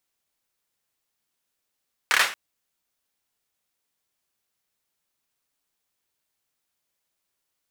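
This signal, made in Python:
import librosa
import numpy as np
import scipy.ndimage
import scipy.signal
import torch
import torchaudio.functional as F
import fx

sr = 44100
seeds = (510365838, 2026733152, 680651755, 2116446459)

y = fx.drum_clap(sr, seeds[0], length_s=0.23, bursts=4, spacing_ms=28, hz=1700.0, decay_s=0.36)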